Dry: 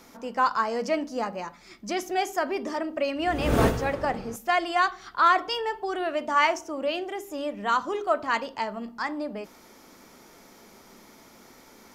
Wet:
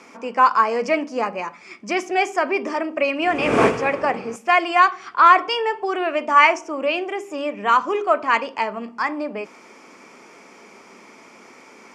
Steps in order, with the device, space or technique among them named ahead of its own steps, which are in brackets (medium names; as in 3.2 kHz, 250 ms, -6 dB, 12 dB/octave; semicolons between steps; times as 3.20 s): full-range speaker at full volume (loudspeaker Doppler distortion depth 0.23 ms; cabinet simulation 200–8500 Hz, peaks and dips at 430 Hz +3 dB, 1.1 kHz +5 dB, 2.4 kHz +10 dB, 3.9 kHz -9 dB, 6.4 kHz -3 dB); trim +5 dB